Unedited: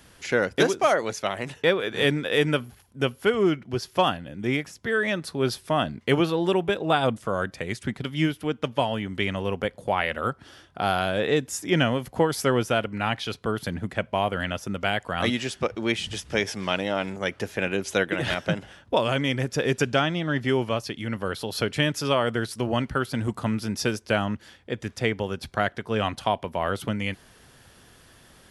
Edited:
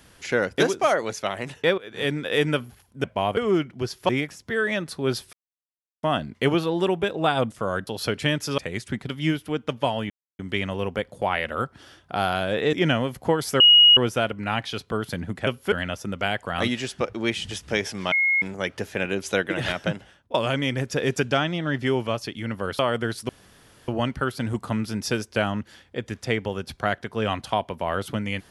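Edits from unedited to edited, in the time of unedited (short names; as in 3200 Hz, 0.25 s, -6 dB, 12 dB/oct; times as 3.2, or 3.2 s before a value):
1.78–2.45 fade in equal-power, from -19 dB
3.04–3.29 swap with 14.01–14.34
4.01–4.45 cut
5.69 insert silence 0.70 s
9.05 insert silence 0.29 s
11.39–11.64 cut
12.51 add tone 2890 Hz -9.5 dBFS 0.37 s
16.74–17.04 bleep 2160 Hz -17.5 dBFS
18.47–18.96 fade out, to -22.5 dB
21.41–22.12 move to 7.53
22.62 insert room tone 0.59 s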